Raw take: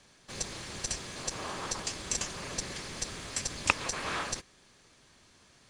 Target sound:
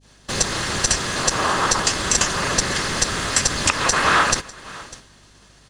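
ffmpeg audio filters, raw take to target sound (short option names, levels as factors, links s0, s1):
-filter_complex "[0:a]bandreject=f=2300:w=12,aecho=1:1:599:0.0708,adynamicequalizer=threshold=0.00251:dfrequency=1400:dqfactor=1.2:tfrequency=1400:tqfactor=1.2:attack=5:release=100:ratio=0.375:range=3:mode=boostabove:tftype=bell,asplit=2[s0][s1];[s1]acompressor=threshold=0.00501:ratio=6,volume=1.06[s2];[s0][s2]amix=inputs=2:normalize=0,agate=range=0.0224:threshold=0.00501:ratio=3:detection=peak,aeval=exprs='val(0)+0.000398*(sin(2*PI*50*n/s)+sin(2*PI*2*50*n/s)/2+sin(2*PI*3*50*n/s)/3+sin(2*PI*4*50*n/s)/4+sin(2*PI*5*50*n/s)/5)':c=same,alimiter=level_in=4.73:limit=0.891:release=50:level=0:latency=1"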